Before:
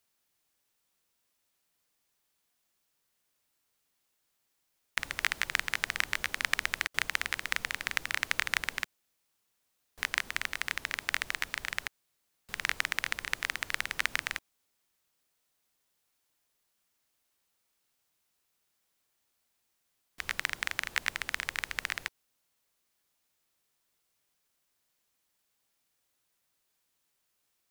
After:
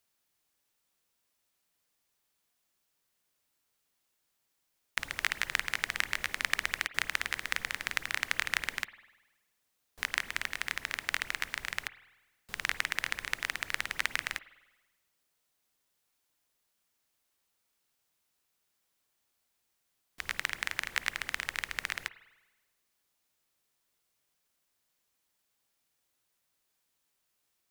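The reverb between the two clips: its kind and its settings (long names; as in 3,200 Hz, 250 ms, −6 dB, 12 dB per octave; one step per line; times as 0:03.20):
spring reverb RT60 1.1 s, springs 49 ms, chirp 45 ms, DRR 15.5 dB
level −1 dB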